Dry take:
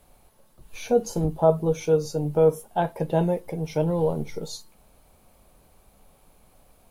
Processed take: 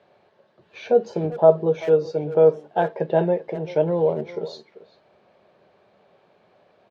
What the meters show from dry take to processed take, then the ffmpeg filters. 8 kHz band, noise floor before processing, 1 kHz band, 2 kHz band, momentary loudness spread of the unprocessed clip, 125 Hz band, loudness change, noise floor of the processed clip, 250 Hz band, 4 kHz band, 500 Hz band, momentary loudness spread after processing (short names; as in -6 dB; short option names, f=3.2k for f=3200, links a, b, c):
under -15 dB, -59 dBFS, +2.0 dB, +4.0 dB, 13 LU, -3.0 dB, +3.5 dB, -61 dBFS, -1.0 dB, n/a, +4.5 dB, 11 LU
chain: -filter_complex "[0:a]highpass=f=120:w=0.5412,highpass=f=120:w=1.3066,equalizer=f=140:t=q:w=4:g=-5,equalizer=f=260:t=q:w=4:g=-6,equalizer=f=390:t=q:w=4:g=8,equalizer=f=600:t=q:w=4:g=7,equalizer=f=1.7k:t=q:w=4:g=7,lowpass=f=4.2k:w=0.5412,lowpass=f=4.2k:w=1.3066,asplit=2[a][b];[b]adelay=390,highpass=300,lowpass=3.4k,asoftclip=type=hard:threshold=-12dB,volume=-15dB[c];[a][c]amix=inputs=2:normalize=0"